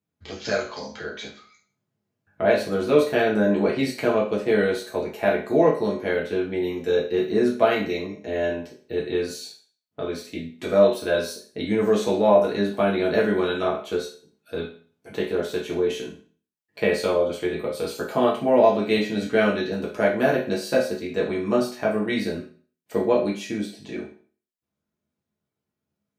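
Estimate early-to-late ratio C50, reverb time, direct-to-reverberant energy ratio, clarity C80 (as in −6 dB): 7.0 dB, 0.40 s, −4.5 dB, 12.0 dB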